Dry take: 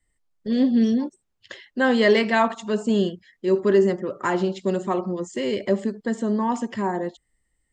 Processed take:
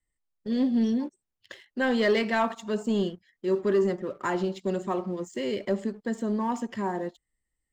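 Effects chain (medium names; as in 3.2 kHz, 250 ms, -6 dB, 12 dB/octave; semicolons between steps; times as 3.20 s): waveshaping leveller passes 1; trim -8.5 dB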